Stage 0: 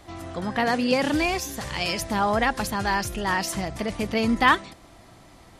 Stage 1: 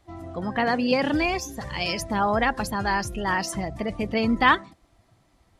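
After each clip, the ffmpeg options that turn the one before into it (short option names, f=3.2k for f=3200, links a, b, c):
-af "afftdn=nr=14:nf=-35"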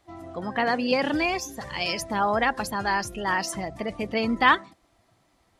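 -af "lowshelf=f=160:g=-10"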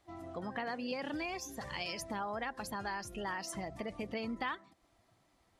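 -af "acompressor=threshold=-31dB:ratio=4,volume=-6dB"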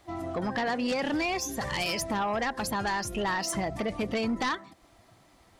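-af "aeval=exprs='0.0631*sin(PI/2*2.51*val(0)/0.0631)':c=same"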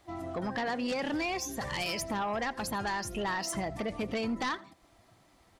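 -af "aecho=1:1:83:0.075,volume=-3.5dB"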